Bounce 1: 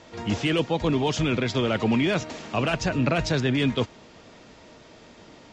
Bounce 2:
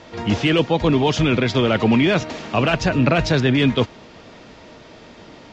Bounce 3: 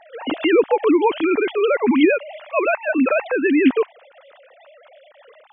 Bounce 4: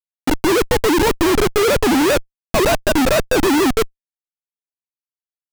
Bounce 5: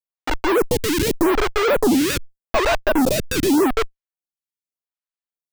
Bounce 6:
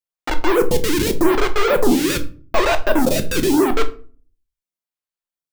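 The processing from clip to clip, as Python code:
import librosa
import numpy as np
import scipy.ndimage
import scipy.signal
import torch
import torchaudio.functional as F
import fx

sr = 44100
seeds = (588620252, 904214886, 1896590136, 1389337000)

y1 = scipy.signal.sosfilt(scipy.signal.butter(2, 5600.0, 'lowpass', fs=sr, output='sos'), x)
y1 = F.gain(torch.from_numpy(y1), 6.5).numpy()
y2 = fx.sine_speech(y1, sr)
y3 = fx.schmitt(y2, sr, flips_db=-18.5)
y3 = F.gain(torch.from_numpy(y3), 5.5).numpy()
y4 = fx.stagger_phaser(y3, sr, hz=0.84)
y5 = fx.room_shoebox(y4, sr, seeds[0], volume_m3=280.0, walls='furnished', distance_m=0.86)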